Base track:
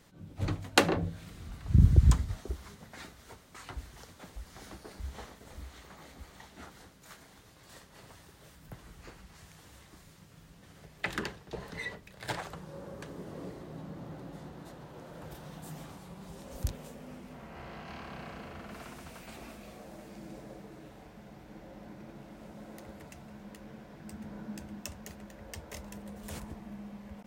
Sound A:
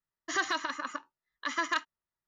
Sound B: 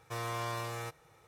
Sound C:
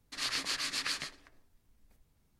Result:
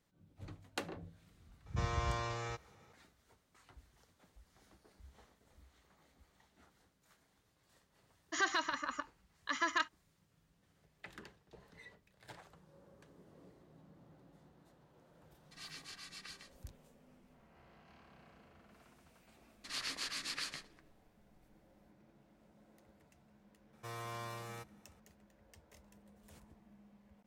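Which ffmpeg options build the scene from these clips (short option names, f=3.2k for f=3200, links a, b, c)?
-filter_complex "[2:a]asplit=2[a][b];[3:a]asplit=2[c][d];[0:a]volume=-18dB[e];[a]aresample=16000,aresample=44100[f];[c]aecho=1:1:2.6:0.69[g];[f]atrim=end=1.27,asetpts=PTS-STARTPTS,volume=-2dB,afade=t=in:d=0.004:c=hsin,afade=t=out:st=1.266:d=0.004:c=hsin,adelay=1660[h];[1:a]atrim=end=2.27,asetpts=PTS-STARTPTS,volume=-3.5dB,afade=t=in:d=0.004:c=hsin,afade=t=out:st=2.266:d=0.004:c=hsin,adelay=8040[i];[g]atrim=end=2.39,asetpts=PTS-STARTPTS,volume=-18dB,afade=t=in:d=0.004:c=hsin,afade=t=out:st=2.386:d=0.004:c=hsin,adelay=15390[j];[d]atrim=end=2.39,asetpts=PTS-STARTPTS,volume=-6.5dB,afade=t=in:d=0.004:c=hsin,afade=t=out:st=2.386:d=0.004:c=hsin,adelay=19520[k];[b]atrim=end=1.27,asetpts=PTS-STARTPTS,volume=-8dB,afade=t=in:d=0.004:c=hsin,afade=t=out:st=1.266:d=0.004:c=hsin,adelay=23730[l];[e][h][i][j][k][l]amix=inputs=6:normalize=0"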